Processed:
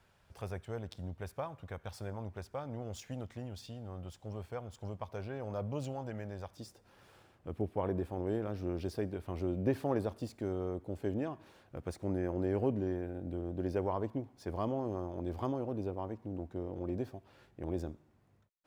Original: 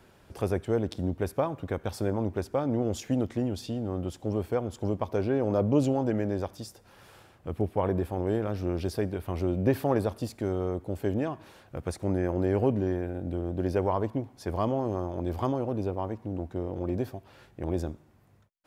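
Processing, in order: median filter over 3 samples; peaking EQ 310 Hz -11.5 dB 1.3 oct, from 6.57 s +2 dB; trim -8 dB

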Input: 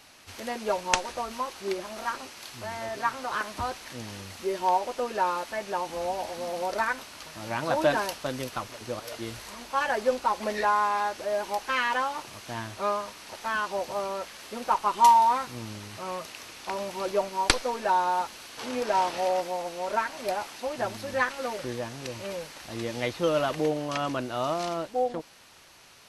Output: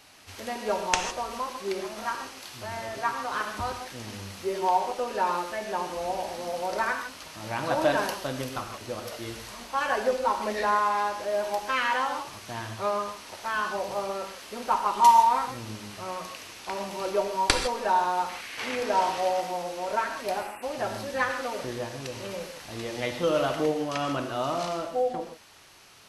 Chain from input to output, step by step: 18.29–18.76 s: peaking EQ 2.1 kHz +12.5 dB 0.86 oct; 20.40–20.63 s: spectral selection erased 2.9–7.5 kHz; gated-style reverb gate 180 ms flat, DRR 4.5 dB; trim -1 dB

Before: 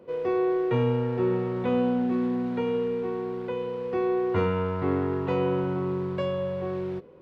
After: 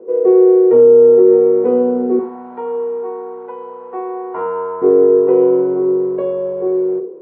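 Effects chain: ladder band-pass 420 Hz, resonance 65%; 2.19–4.82 s: resonant low shelf 630 Hz -11 dB, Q 3; reverberation RT60 0.45 s, pre-delay 3 ms, DRR 5 dB; loudness maximiser +21 dB; trim -1 dB

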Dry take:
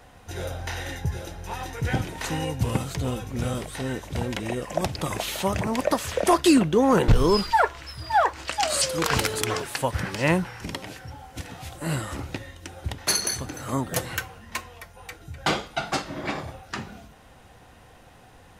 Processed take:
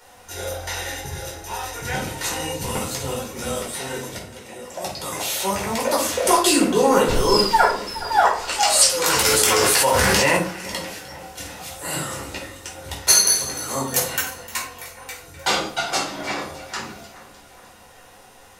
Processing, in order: tone controls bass -14 dB, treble +9 dB; 4.17–6.09 s: fade in equal-power; two-band feedback delay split 2.1 kHz, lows 418 ms, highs 304 ms, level -16 dB; simulated room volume 400 m³, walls furnished, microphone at 4.6 m; 9.25–10.37 s: level flattener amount 100%; trim -3.5 dB

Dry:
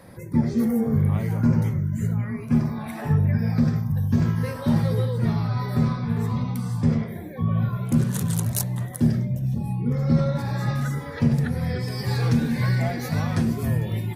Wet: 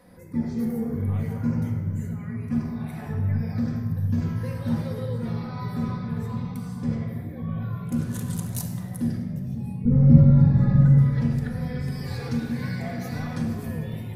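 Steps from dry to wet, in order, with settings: 9.85–10.98 s: tilt EQ -4.5 dB/octave; simulated room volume 3100 m³, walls mixed, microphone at 1.9 m; trim -8.5 dB

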